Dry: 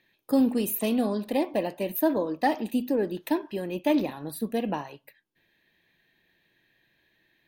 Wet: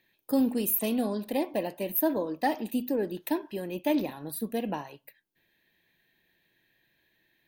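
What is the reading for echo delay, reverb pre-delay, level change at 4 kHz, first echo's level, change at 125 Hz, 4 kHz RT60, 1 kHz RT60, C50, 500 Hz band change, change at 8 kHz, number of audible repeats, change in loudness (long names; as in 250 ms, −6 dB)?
no echo audible, no reverb audible, −2.5 dB, no echo audible, −3.0 dB, no reverb audible, no reverb audible, no reverb audible, −3.0 dB, +1.5 dB, no echo audible, −2.5 dB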